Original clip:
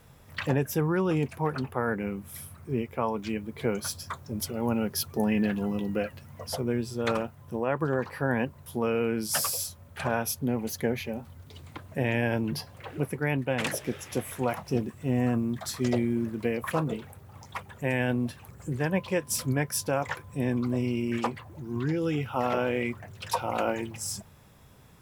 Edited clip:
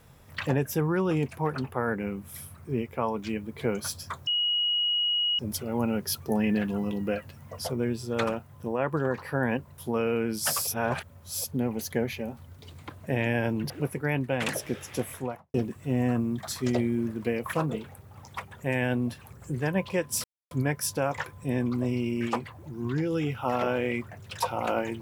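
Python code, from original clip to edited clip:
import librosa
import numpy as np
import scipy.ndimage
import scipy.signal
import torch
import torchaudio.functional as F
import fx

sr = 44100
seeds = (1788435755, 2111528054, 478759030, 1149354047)

y = fx.studio_fade_out(x, sr, start_s=14.24, length_s=0.48)
y = fx.edit(y, sr, fx.insert_tone(at_s=4.27, length_s=1.12, hz=2900.0, db=-23.0),
    fx.reverse_span(start_s=9.55, length_s=0.77),
    fx.cut(start_s=12.58, length_s=0.3),
    fx.insert_silence(at_s=19.42, length_s=0.27), tone=tone)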